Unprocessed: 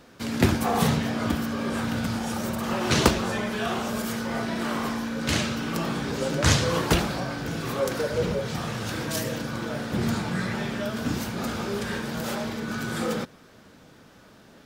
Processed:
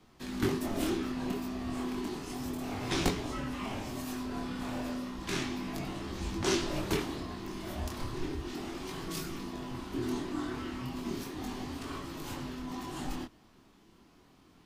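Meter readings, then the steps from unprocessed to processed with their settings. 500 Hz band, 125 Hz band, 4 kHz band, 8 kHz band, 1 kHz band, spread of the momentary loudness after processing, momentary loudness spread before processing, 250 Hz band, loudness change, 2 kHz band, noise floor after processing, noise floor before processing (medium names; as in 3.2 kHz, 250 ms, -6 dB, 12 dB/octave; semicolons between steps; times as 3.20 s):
-10.0 dB, -12.0 dB, -9.5 dB, -10.0 dB, -10.5 dB, 8 LU, 8 LU, -7.5 dB, -9.5 dB, -12.0 dB, -61 dBFS, -52 dBFS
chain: chorus 0.33 Hz, delay 20 ms, depth 7.2 ms; frequency shift -480 Hz; trim -6 dB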